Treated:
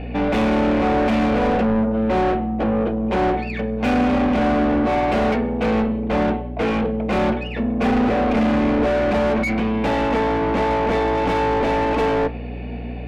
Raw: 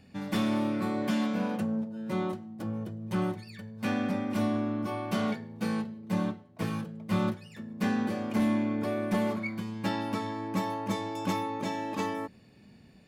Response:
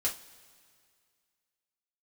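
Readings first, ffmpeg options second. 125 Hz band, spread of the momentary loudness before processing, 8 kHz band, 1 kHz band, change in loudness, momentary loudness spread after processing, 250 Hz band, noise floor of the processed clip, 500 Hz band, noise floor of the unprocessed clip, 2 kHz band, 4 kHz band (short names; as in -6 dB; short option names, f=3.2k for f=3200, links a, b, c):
+9.0 dB, 7 LU, n/a, +14.5 dB, +12.0 dB, 4 LU, +10.0 dB, -29 dBFS, +16.0 dB, -56 dBFS, +13.0 dB, +9.0 dB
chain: -filter_complex "[0:a]highpass=f=210:w=0.5412,highpass=f=210:w=1.3066,equalizer=f=250:t=q:w=4:g=9,equalizer=f=470:t=q:w=4:g=8,equalizer=f=710:t=q:w=4:g=7,equalizer=f=1.2k:t=q:w=4:g=-8,equalizer=f=1.7k:t=q:w=4:g=-5,equalizer=f=2.5k:t=q:w=4:g=5,lowpass=f=3.3k:w=0.5412,lowpass=f=3.3k:w=1.3066,asplit=2[a][b];[b]highpass=f=720:p=1,volume=33dB,asoftclip=type=tanh:threshold=-12.5dB[c];[a][c]amix=inputs=2:normalize=0,lowpass=f=1.6k:p=1,volume=-6dB,asplit=2[d][e];[1:a]atrim=start_sample=2205,afade=t=out:st=0.32:d=0.01,atrim=end_sample=14553,lowpass=3.7k[f];[e][f]afir=irnorm=-1:irlink=0,volume=-13dB[g];[d][g]amix=inputs=2:normalize=0,aeval=exprs='val(0)+0.0398*(sin(2*PI*60*n/s)+sin(2*PI*2*60*n/s)/2+sin(2*PI*3*60*n/s)/3+sin(2*PI*4*60*n/s)/4+sin(2*PI*5*60*n/s)/5)':c=same,volume=-1dB"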